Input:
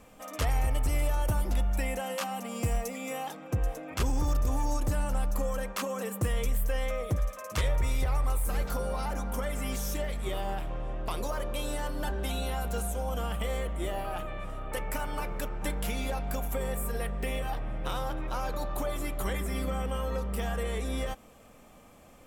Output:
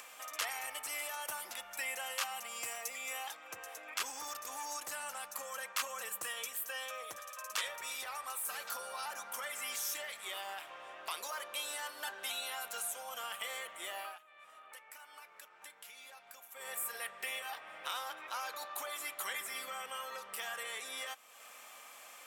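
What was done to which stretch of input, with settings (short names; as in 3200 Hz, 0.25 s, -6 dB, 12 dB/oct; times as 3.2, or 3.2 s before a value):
6.06–9.22 notch 2100 Hz
14.05–16.69 dip -20.5 dB, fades 0.14 s
whole clip: HPF 1300 Hz 12 dB/oct; upward compressor, threshold -45 dBFS; gain +1 dB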